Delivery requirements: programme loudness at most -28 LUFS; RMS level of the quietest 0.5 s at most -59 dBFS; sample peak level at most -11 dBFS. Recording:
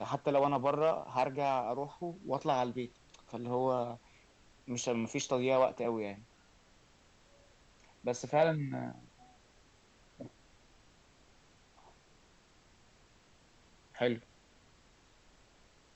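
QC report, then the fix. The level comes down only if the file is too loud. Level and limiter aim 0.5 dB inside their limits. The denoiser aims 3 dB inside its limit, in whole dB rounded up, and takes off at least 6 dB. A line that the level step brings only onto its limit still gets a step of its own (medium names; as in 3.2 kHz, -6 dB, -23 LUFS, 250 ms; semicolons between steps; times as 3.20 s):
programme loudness -34.0 LUFS: pass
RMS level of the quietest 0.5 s -64 dBFS: pass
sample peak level -16.5 dBFS: pass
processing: none needed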